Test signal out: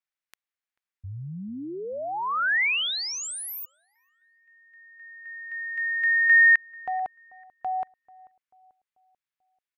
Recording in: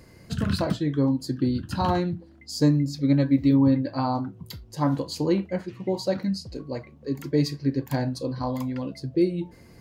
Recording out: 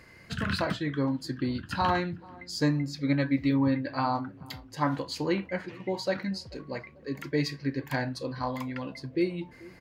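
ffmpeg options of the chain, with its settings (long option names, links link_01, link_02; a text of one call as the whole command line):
ffmpeg -i in.wav -filter_complex "[0:a]equalizer=frequency=1900:width_type=o:width=2.1:gain=13.5,asplit=2[link_01][link_02];[link_02]adelay=439,lowpass=frequency=1100:poles=1,volume=-21.5dB,asplit=2[link_03][link_04];[link_04]adelay=439,lowpass=frequency=1100:poles=1,volume=0.52,asplit=2[link_05][link_06];[link_06]adelay=439,lowpass=frequency=1100:poles=1,volume=0.52,asplit=2[link_07][link_08];[link_08]adelay=439,lowpass=frequency=1100:poles=1,volume=0.52[link_09];[link_03][link_05][link_07][link_09]amix=inputs=4:normalize=0[link_10];[link_01][link_10]amix=inputs=2:normalize=0,volume=-7dB" out.wav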